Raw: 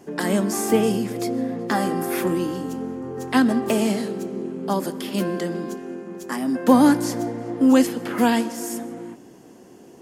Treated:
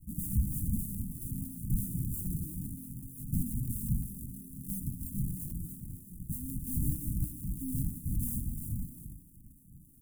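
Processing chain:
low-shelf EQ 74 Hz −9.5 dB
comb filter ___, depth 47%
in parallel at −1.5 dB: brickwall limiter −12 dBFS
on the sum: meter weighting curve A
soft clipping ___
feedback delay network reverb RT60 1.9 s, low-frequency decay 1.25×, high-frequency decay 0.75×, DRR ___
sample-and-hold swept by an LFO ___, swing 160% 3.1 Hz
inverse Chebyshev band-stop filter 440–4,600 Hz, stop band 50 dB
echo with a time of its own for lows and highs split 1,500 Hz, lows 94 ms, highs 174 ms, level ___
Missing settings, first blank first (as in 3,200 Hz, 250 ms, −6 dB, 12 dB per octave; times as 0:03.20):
6.9 ms, −19.5 dBFS, 17 dB, 38×, −16 dB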